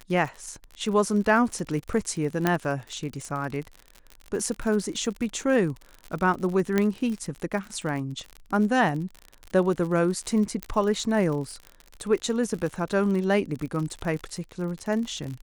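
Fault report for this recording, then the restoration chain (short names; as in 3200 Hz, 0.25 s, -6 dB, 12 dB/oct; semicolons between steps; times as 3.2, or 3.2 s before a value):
crackle 60/s -31 dBFS
2.47 pop -8 dBFS
6.78 pop -10 dBFS
10.63 pop -13 dBFS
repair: de-click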